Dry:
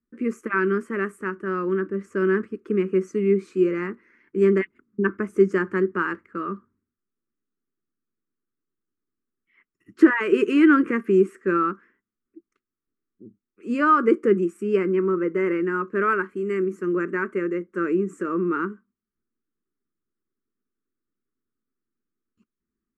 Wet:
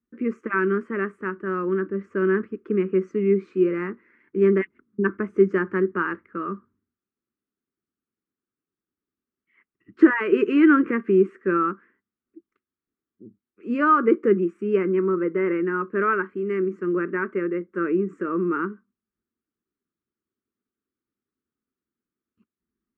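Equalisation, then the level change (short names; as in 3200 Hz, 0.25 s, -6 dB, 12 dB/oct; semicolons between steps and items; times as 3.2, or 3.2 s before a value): HPF 46 Hz; LPF 2700 Hz 12 dB/oct; 0.0 dB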